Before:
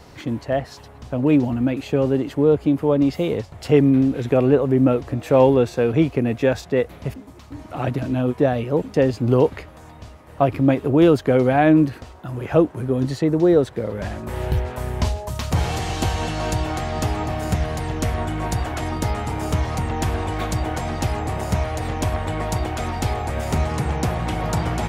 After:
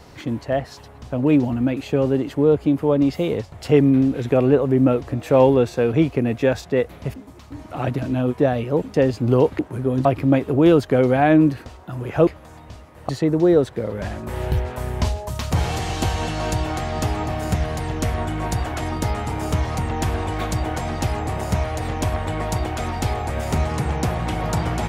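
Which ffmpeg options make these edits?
ffmpeg -i in.wav -filter_complex "[0:a]asplit=5[link_01][link_02][link_03][link_04][link_05];[link_01]atrim=end=9.592[link_06];[link_02]atrim=start=12.628:end=13.092[link_07];[link_03]atrim=start=10.408:end=12.632[link_08];[link_04]atrim=start=9.588:end=10.412[link_09];[link_05]atrim=start=13.088[link_10];[link_06][link_07]acrossfade=duration=0.004:curve1=hsin:curve2=hsin[link_11];[link_11][link_08]acrossfade=duration=0.004:curve1=hsin:curve2=hsin[link_12];[link_12][link_09]acrossfade=duration=0.004:curve1=hsin:curve2=hsin[link_13];[link_13][link_10]acrossfade=duration=0.004:curve1=hsin:curve2=hsin" out.wav

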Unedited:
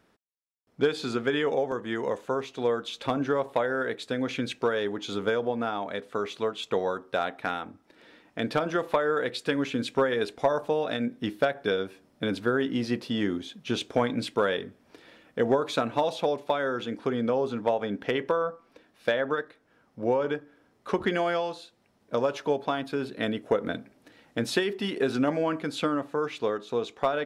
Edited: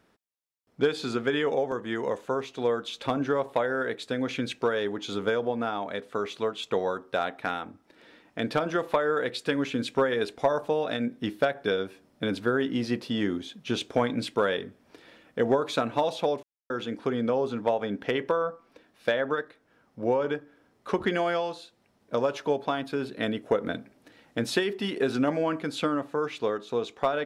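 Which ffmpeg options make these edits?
ffmpeg -i in.wav -filter_complex "[0:a]asplit=3[link_01][link_02][link_03];[link_01]atrim=end=16.43,asetpts=PTS-STARTPTS,afade=type=out:start_time=16.426:duration=0.004:curve=hsin[link_04];[link_02]atrim=start=16.43:end=16.7,asetpts=PTS-STARTPTS,volume=0[link_05];[link_03]atrim=start=16.7,asetpts=PTS-STARTPTS,afade=type=in:duration=0.004:curve=hsin[link_06];[link_04][link_05][link_06]concat=n=3:v=0:a=1" out.wav

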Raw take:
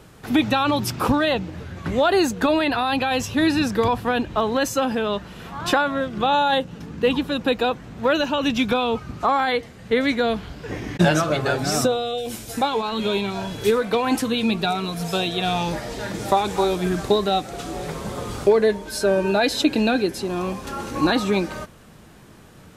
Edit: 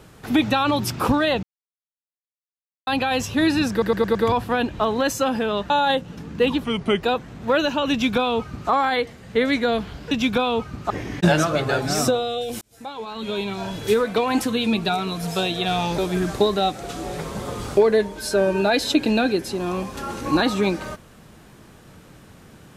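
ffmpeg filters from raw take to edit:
ffmpeg -i in.wav -filter_complex "[0:a]asplit=14[link_01][link_02][link_03][link_04][link_05][link_06][link_07][link_08][link_09][link_10][link_11][link_12][link_13][link_14];[link_01]atrim=end=1.43,asetpts=PTS-STARTPTS,afade=type=out:start_time=1.426:duration=0.004:curve=hsin[link_15];[link_02]atrim=start=1.43:end=2.87,asetpts=PTS-STARTPTS,volume=0[link_16];[link_03]atrim=start=2.87:end=3.822,asetpts=PTS-STARTPTS,afade=type=in:duration=0.004:curve=hsin[link_17];[link_04]atrim=start=3.708:end=3.822[link_18];[link_05]atrim=start=3.708:end=3.822[link_19];[link_06]atrim=start=3.708:end=3.822[link_20];[link_07]atrim=start=3.708:end=5.262[link_21];[link_08]atrim=start=6.328:end=7.274[link_22];[link_09]atrim=start=7.27:end=7.58,asetpts=PTS-STARTPTS,asetrate=35721,aresample=44100[link_23];[link_10]atrim=start=7.576:end=10.672[link_24];[link_11]atrim=start=8.468:end=9.262[link_25];[link_12]atrim=start=10.668:end=12.38,asetpts=PTS-STARTPTS,afade=type=out:start_time=1.708:duration=0.004:curve=hsin[link_26];[link_13]atrim=start=12.38:end=15.752,asetpts=PTS-STARTPTS,afade=type=in:duration=1.16[link_27];[link_14]atrim=start=16.678[link_28];[link_15][link_16][link_17]concat=n=3:v=0:a=1[link_29];[link_29][link_18]acrossfade=duration=0.004:curve1=hsin:curve2=hsin[link_30];[link_30][link_19]acrossfade=duration=0.004:curve1=hsin:curve2=hsin[link_31];[link_31][link_20]acrossfade=duration=0.004:curve1=hsin:curve2=hsin[link_32];[link_32][link_21]acrossfade=duration=0.004:curve1=hsin:curve2=hsin[link_33];[link_33][link_22]acrossfade=duration=0.004:curve1=hsin:curve2=hsin[link_34];[link_34][link_23]acrossfade=duration=0.004:curve1=hsin:curve2=hsin[link_35];[link_35][link_24]acrossfade=duration=0.004:curve1=hsin:curve2=hsin[link_36];[link_36][link_25]acrossfade=duration=0.004:curve1=hsin:curve2=hsin[link_37];[link_26][link_27]concat=n=2:v=0:a=1[link_38];[link_37][link_38]acrossfade=duration=0.004:curve1=hsin:curve2=hsin[link_39];[link_39][link_28]acrossfade=duration=0.004:curve1=hsin:curve2=hsin" out.wav

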